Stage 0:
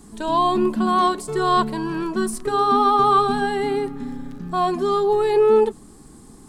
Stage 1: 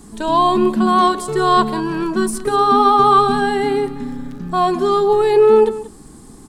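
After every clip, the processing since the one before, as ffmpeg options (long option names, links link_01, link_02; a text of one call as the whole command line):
ffmpeg -i in.wav -af "aecho=1:1:182:0.158,volume=4.5dB" out.wav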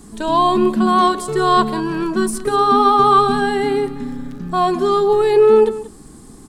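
ffmpeg -i in.wav -af "equalizer=frequency=880:width_type=o:width=0.24:gain=-3" out.wav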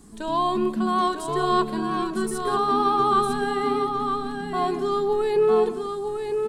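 ffmpeg -i in.wav -af "aecho=1:1:954:0.501,volume=-8.5dB" out.wav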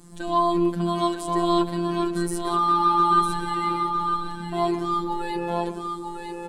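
ffmpeg -i in.wav -af "afftfilt=real='hypot(re,im)*cos(PI*b)':imag='0':win_size=1024:overlap=0.75,volume=4dB" out.wav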